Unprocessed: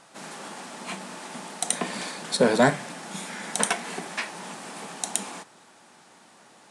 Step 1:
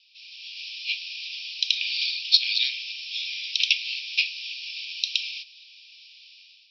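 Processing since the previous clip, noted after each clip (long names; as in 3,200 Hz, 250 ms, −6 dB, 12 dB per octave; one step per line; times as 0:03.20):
Chebyshev band-pass filter 2,400–5,400 Hz, order 5
automatic gain control gain up to 11 dB
level +2.5 dB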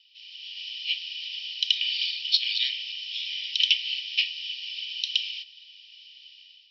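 hollow resonant body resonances 1,900/3,000 Hz, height 17 dB, ringing for 20 ms
level −6 dB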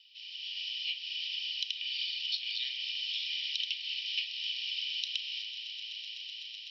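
downward compressor, threshold −33 dBFS, peak gain reduction 16 dB
echo that builds up and dies away 126 ms, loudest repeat 8, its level −16.5 dB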